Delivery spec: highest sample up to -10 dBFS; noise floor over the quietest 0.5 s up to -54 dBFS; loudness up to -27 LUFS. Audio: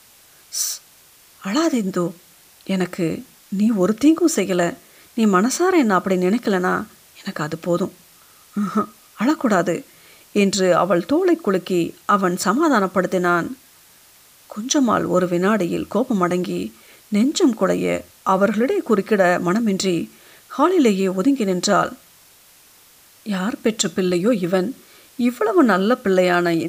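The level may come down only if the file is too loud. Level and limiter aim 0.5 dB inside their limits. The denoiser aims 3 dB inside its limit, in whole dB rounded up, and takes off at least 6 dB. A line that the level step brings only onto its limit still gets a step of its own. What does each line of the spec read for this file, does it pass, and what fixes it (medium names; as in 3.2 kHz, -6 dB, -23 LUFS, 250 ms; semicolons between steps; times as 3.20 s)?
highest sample -5.0 dBFS: fail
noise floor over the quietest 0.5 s -50 dBFS: fail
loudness -19.5 LUFS: fail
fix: trim -8 dB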